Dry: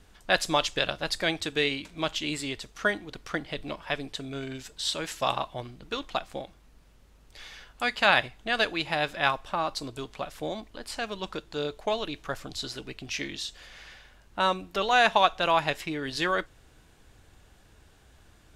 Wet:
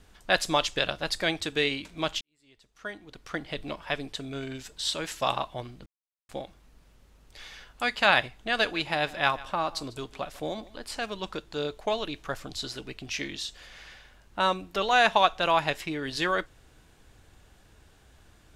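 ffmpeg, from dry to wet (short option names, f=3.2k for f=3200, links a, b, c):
-filter_complex "[0:a]asettb=1/sr,asplit=3[a][b][c];[a]atrim=end=8.374[d];[b]atrim=start=8.37:end=11.06,asetpts=PTS-STARTPTS,afade=t=in:d=0.004:c=qsin,afade=t=out:st=2.686:d=0.004:c=qsin,aecho=1:1:148:0.106,atrim=end_sample=118629[e];[c]atrim=start=11.056[f];[d][e]acrossfade=d=0.004:c1=hsin:c2=qsin[g];[g][f]acrossfade=d=0.004:c1=qsin:c2=hsin,asplit=4[h][i][j][k];[h]atrim=end=2.21,asetpts=PTS-STARTPTS,afade=t=out:st=2.206:d=0.004:c=hsin[l];[i]atrim=start=2.21:end=5.86,asetpts=PTS-STARTPTS,afade=t=in:d=1.3:c=qua,afade=t=out:st=3.646:d=0.004:c=hsin[m];[j]atrim=start=5.86:end=6.29,asetpts=PTS-STARTPTS,volume=0[n];[k]atrim=start=6.29,asetpts=PTS-STARTPTS,afade=t=in:d=0.004:c=hsin[o];[l][m][n][o]concat=n=4:v=0:a=1"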